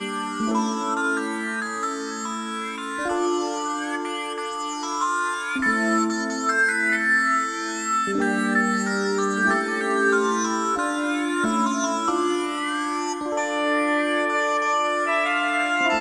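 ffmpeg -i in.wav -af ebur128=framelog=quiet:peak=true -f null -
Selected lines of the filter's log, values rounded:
Integrated loudness:
  I:         -22.9 LUFS
  Threshold: -32.9 LUFS
Loudness range:
  LRA:         4.9 LU
  Threshold: -42.9 LUFS
  LRA low:   -26.1 LUFS
  LRA high:  -21.2 LUFS
True peak:
  Peak:       -9.2 dBFS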